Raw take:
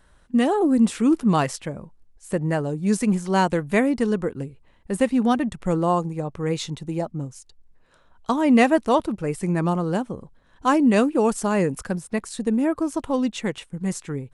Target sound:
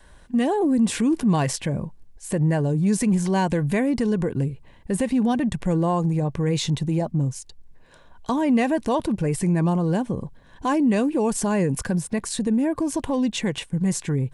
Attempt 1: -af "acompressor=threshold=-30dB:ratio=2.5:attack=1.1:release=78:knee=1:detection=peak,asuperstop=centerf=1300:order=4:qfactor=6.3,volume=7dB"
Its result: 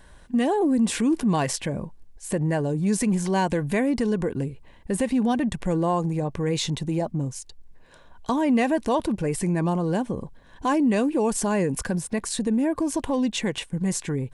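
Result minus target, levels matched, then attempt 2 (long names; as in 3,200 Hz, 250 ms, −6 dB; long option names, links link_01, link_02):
125 Hz band −2.5 dB
-af "acompressor=threshold=-30dB:ratio=2.5:attack=1.1:release=78:knee=1:detection=peak,adynamicequalizer=threshold=0.00562:dfrequency=130:dqfactor=1.3:tfrequency=130:tqfactor=1.3:attack=5:release=100:ratio=0.45:range=3:mode=boostabove:tftype=bell,asuperstop=centerf=1300:order=4:qfactor=6.3,volume=7dB"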